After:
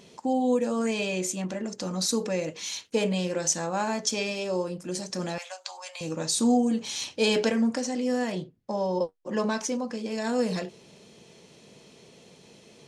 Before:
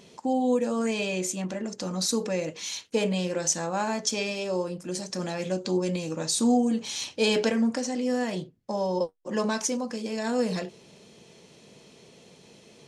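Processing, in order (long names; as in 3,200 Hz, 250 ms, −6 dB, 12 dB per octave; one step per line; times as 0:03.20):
0:05.38–0:06.01: Butterworth high-pass 670 Hz 48 dB per octave
0:08.32–0:10.11: high-shelf EQ 6,700 Hz −9 dB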